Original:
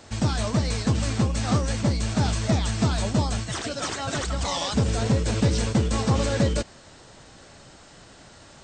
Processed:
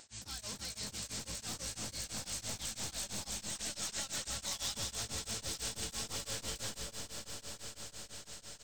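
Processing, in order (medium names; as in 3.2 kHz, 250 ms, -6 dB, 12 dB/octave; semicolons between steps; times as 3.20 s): one-sided wavefolder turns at -20 dBFS; peaking EQ 1.2 kHz -3 dB 0.33 oct; doubling 19 ms -12 dB; in parallel at -3 dB: peak limiter -20.5 dBFS, peak gain reduction 10 dB; on the sum: pre-emphasis filter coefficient 0.9; two-band feedback delay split 1.7 kHz, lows 301 ms, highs 180 ms, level -5.5 dB; transient shaper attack -6 dB, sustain +9 dB; vibrato 12 Hz 36 cents; reverse; upward compressor, threshold -37 dBFS; reverse; echo with a slow build-up 94 ms, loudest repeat 8, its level -15 dB; tremolo of two beating tones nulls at 6 Hz; trim -6.5 dB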